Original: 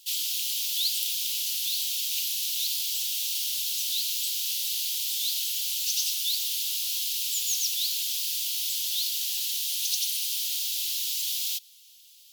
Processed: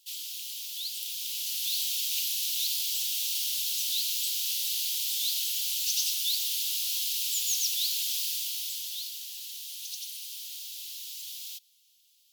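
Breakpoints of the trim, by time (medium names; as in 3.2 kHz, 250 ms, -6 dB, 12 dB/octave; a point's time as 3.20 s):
0.86 s -9 dB
1.76 s -1 dB
8.21 s -1 dB
9.27 s -11 dB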